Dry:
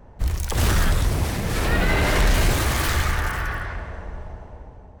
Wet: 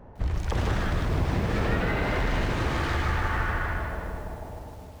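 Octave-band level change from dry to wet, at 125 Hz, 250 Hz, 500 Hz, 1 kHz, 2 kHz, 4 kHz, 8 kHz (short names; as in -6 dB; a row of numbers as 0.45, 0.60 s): -4.0, -2.5, -3.0, -3.0, -5.0, -9.5, -17.0 dB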